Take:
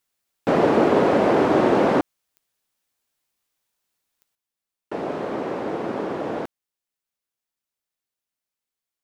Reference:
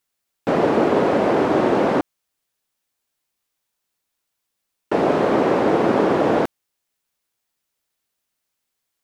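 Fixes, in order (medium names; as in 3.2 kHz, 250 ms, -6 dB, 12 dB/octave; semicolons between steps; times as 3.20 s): de-click; trim 0 dB, from 4.35 s +10 dB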